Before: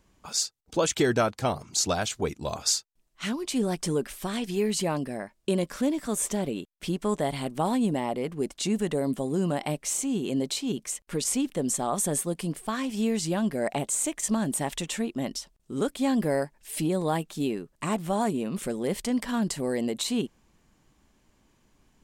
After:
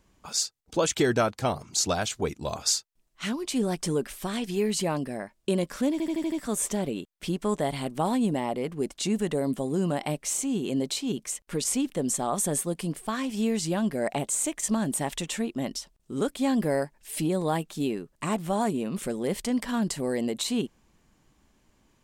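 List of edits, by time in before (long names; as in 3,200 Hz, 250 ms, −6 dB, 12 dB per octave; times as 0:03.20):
0:05.92: stutter 0.08 s, 6 plays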